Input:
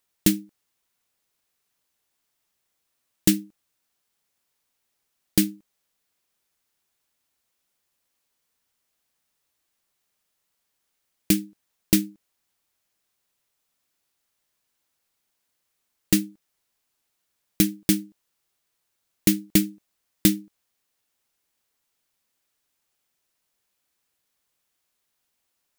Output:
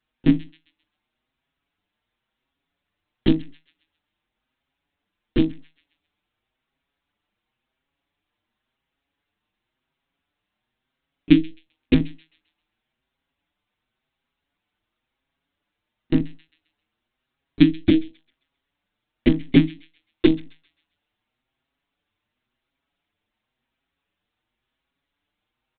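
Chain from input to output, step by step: hum notches 60/120/180/240/300 Hz; monotone LPC vocoder at 8 kHz 160 Hz; peaking EQ 270 Hz +7.5 dB 0.74 oct; feedback echo behind a high-pass 132 ms, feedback 37%, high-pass 1.8 kHz, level -18 dB; endless flanger 6.1 ms +0.94 Hz; trim +5.5 dB

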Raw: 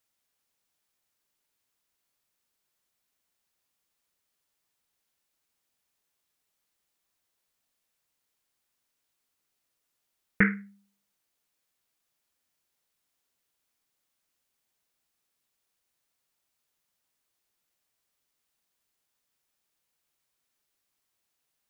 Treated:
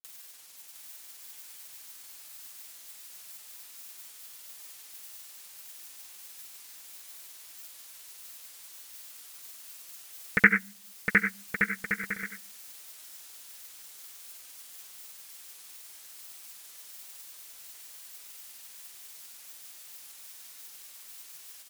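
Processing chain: tilt EQ +3 dB/octave; upward compressor, threshold -33 dBFS; granulator; bouncing-ball echo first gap 710 ms, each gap 0.65×, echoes 5; trim +4.5 dB

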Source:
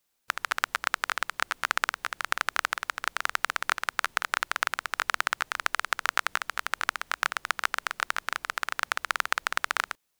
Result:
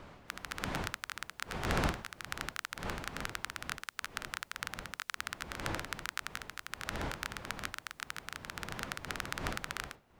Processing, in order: wind noise 600 Hz -25 dBFS; amplifier tone stack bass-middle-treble 5-5-5; trim -2 dB

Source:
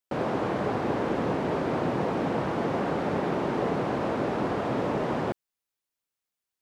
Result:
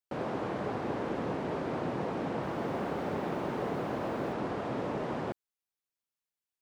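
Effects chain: 2.32–4.33 s: bit-crushed delay 107 ms, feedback 80%, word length 8-bit, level -13.5 dB; trim -6.5 dB

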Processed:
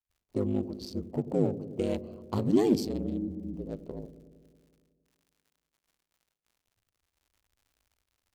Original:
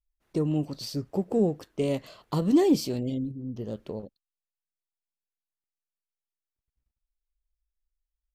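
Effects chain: local Wiener filter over 25 samples; crackle 210 per s -55 dBFS; ring modulator 51 Hz; gate with hold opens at -52 dBFS; on a send: feedback echo behind a low-pass 92 ms, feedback 74%, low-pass 450 Hz, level -12 dB

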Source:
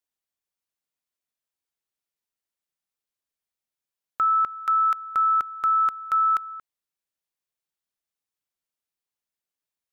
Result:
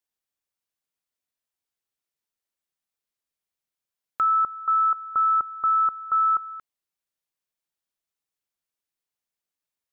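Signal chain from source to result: 4.43–6.44 s: brick-wall FIR low-pass 1.4 kHz

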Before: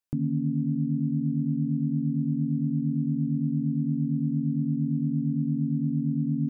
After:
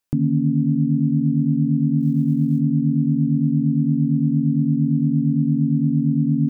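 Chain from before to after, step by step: 2.00–2.60 s: short-mantissa float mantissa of 6-bit; trim +8 dB

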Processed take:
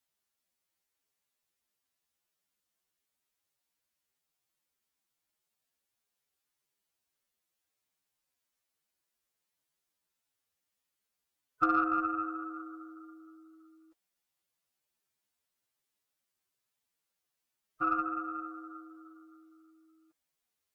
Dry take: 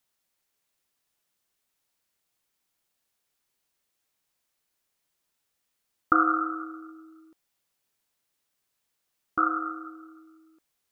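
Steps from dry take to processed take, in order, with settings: time stretch by phase-locked vocoder 1.9×; Chebyshev shaper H 6 -33 dB, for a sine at -7 dBFS; trim -6 dB

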